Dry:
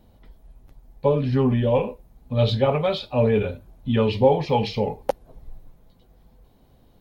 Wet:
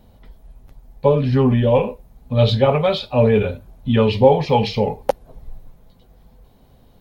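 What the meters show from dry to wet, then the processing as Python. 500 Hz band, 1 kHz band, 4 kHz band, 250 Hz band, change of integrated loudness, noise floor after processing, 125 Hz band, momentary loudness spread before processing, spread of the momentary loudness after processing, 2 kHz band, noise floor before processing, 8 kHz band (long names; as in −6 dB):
+4.5 dB, +5.0 dB, +5.0 dB, +4.5 dB, +4.5 dB, −52 dBFS, +5.0 dB, 11 LU, 11 LU, +5.0 dB, −57 dBFS, can't be measured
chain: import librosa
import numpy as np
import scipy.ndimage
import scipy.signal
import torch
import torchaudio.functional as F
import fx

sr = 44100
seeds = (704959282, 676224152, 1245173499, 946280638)

y = fx.peak_eq(x, sr, hz=320.0, db=-6.5, octaves=0.23)
y = F.gain(torch.from_numpy(y), 5.0).numpy()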